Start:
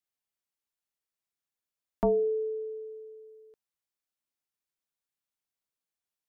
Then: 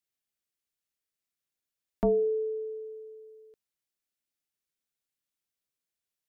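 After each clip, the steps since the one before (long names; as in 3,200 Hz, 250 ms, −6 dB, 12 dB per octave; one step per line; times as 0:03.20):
parametric band 950 Hz −7.5 dB 0.9 octaves
level +1.5 dB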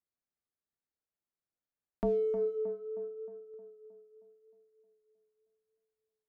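adaptive Wiener filter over 15 samples
in parallel at +0.5 dB: brickwall limiter −29 dBFS, peak gain reduction 11 dB
on the sum: tape delay 312 ms, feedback 63%, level −8 dB, low-pass 1,500 Hz
level −7.5 dB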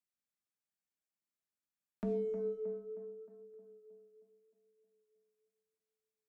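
convolution reverb RT60 0.65 s, pre-delay 3 ms, DRR 4 dB
level −4 dB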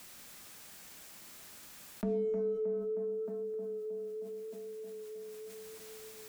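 envelope flattener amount 70%
level +2 dB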